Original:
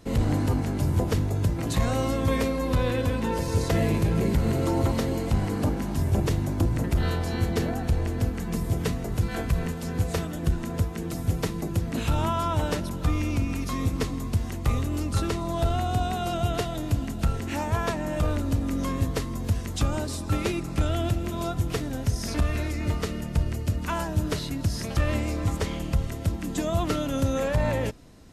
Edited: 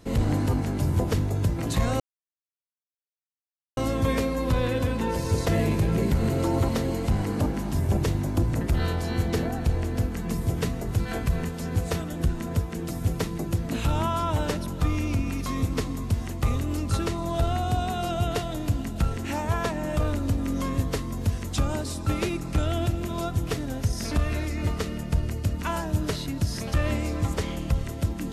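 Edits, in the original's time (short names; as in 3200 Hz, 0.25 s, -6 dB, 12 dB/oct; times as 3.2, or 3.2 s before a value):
2 insert silence 1.77 s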